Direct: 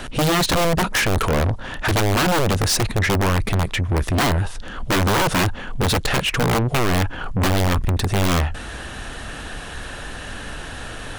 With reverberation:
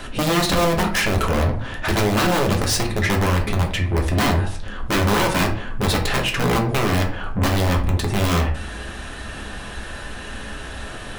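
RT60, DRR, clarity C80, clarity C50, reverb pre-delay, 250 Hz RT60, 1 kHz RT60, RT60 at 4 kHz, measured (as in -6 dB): 0.50 s, 1.0 dB, 13.5 dB, 8.5 dB, 3 ms, 0.60 s, 0.50 s, 0.30 s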